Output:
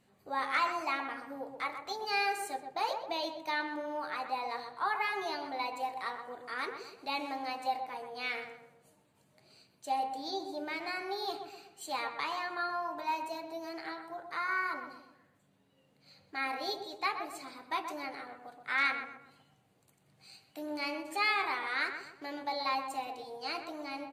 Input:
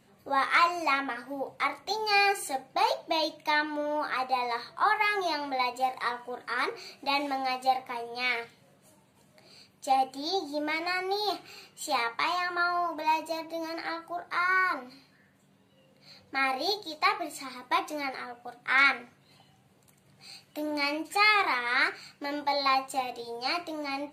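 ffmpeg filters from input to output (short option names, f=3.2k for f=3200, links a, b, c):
-filter_complex "[0:a]asplit=2[a][b];[b]adelay=126,lowpass=f=1.5k:p=1,volume=-6dB,asplit=2[c][d];[d]adelay=126,lowpass=f=1.5k:p=1,volume=0.46,asplit=2[e][f];[f]adelay=126,lowpass=f=1.5k:p=1,volume=0.46,asplit=2[g][h];[h]adelay=126,lowpass=f=1.5k:p=1,volume=0.46,asplit=2[i][j];[j]adelay=126,lowpass=f=1.5k:p=1,volume=0.46,asplit=2[k][l];[l]adelay=126,lowpass=f=1.5k:p=1,volume=0.46[m];[a][c][e][g][i][k][m]amix=inputs=7:normalize=0,volume=-7.5dB"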